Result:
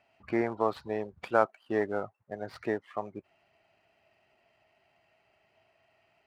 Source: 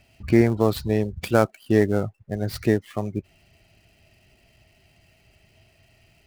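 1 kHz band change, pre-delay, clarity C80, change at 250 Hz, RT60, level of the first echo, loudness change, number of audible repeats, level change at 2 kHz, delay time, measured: -1.5 dB, no reverb, no reverb, -13.5 dB, no reverb, no echo, -9.5 dB, no echo, -6.0 dB, no echo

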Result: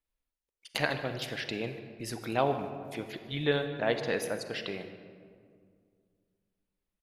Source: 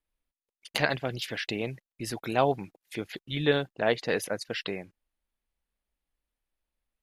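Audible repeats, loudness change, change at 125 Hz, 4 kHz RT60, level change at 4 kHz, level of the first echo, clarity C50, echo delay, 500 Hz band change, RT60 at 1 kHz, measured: 1, -2.5 dB, -2.5 dB, 1.1 s, -3.0 dB, -18.0 dB, 8.0 dB, 150 ms, -2.5 dB, 2.0 s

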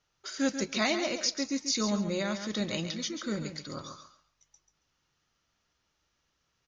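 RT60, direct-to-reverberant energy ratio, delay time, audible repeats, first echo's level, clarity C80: no reverb, no reverb, 138 ms, 2, -9.0 dB, no reverb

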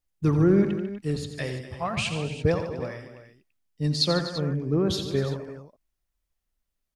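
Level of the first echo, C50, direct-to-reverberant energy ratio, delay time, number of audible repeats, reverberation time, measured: -10.0 dB, no reverb, no reverb, 87 ms, 4, no reverb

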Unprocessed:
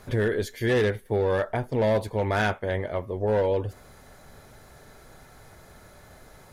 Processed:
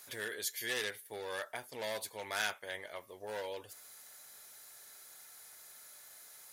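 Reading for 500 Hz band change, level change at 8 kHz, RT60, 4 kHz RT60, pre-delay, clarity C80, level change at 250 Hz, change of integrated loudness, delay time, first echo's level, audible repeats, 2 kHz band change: -18.5 dB, no reading, no reverb, no reverb, no reverb, no reverb, -23.5 dB, -13.5 dB, no echo, no echo, no echo, -7.5 dB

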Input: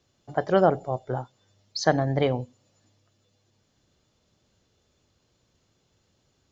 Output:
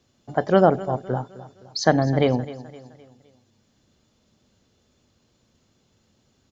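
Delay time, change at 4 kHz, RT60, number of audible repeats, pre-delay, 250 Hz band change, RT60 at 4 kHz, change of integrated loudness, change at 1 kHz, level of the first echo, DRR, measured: 258 ms, +3.0 dB, no reverb, 3, no reverb, +6.0 dB, no reverb, +3.5 dB, +3.5 dB, -17.0 dB, no reverb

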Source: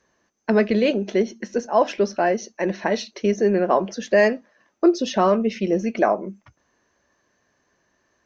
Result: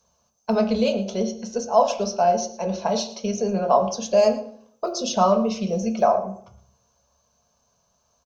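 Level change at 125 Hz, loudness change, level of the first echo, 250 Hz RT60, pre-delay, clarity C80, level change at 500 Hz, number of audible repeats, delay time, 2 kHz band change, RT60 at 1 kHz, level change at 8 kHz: -0.5 dB, -1.0 dB, -17.0 dB, 0.75 s, 3 ms, 13.0 dB, -1.0 dB, 1, 113 ms, -11.5 dB, 0.60 s, no reading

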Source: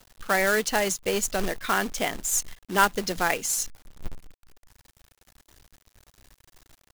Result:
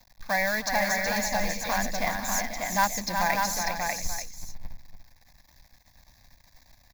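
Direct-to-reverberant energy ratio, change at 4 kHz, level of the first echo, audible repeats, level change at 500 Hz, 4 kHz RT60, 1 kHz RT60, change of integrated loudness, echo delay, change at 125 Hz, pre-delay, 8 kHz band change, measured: no reverb, -0.5 dB, -17.0 dB, 6, -3.5 dB, no reverb, no reverb, -1.5 dB, 312 ms, 0.0 dB, no reverb, -3.0 dB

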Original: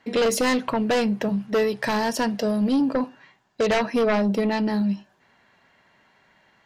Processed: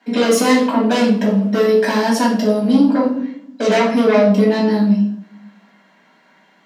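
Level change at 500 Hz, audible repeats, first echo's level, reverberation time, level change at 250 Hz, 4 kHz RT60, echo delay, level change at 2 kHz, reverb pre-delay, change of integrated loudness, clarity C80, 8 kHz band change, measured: +8.0 dB, no echo, no echo, 0.65 s, +9.0 dB, 0.45 s, no echo, +5.5 dB, 3 ms, +8.0 dB, 9.0 dB, +5.5 dB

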